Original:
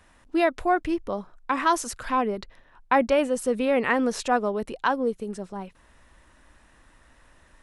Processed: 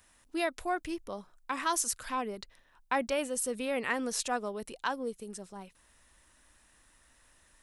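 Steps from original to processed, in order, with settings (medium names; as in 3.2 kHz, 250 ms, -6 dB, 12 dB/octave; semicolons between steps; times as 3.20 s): pre-emphasis filter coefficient 0.8; trim +3 dB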